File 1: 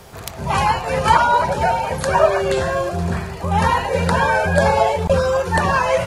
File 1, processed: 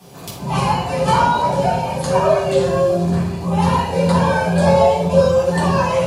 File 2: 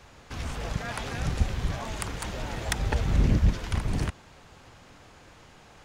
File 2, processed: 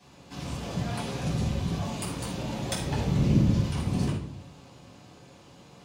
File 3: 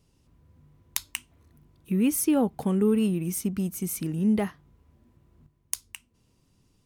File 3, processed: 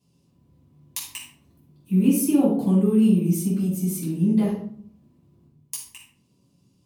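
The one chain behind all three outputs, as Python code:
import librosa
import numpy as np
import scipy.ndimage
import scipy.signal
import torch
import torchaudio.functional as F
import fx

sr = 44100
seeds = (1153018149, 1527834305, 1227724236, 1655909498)

y = scipy.signal.sosfilt(scipy.signal.butter(2, 130.0, 'highpass', fs=sr, output='sos'), x)
y = fx.peak_eq(y, sr, hz=1500.0, db=-9.5, octaves=1.3)
y = fx.room_shoebox(y, sr, seeds[0], volume_m3=690.0, walls='furnished', distance_m=8.9)
y = F.gain(torch.from_numpy(y), -8.0).numpy()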